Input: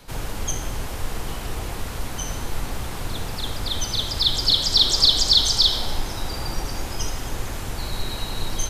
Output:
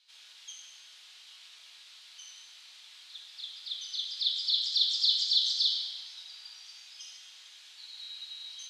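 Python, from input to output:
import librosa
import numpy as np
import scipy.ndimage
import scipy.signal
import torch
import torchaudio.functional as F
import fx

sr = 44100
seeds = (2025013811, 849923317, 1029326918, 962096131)

y = fx.ladder_bandpass(x, sr, hz=4400.0, resonance_pct=45)
y = fx.high_shelf(y, sr, hz=4600.0, db=-10.5)
y = fx.rev_fdn(y, sr, rt60_s=1.2, lf_ratio=1.05, hf_ratio=1.0, size_ms=64.0, drr_db=1.0)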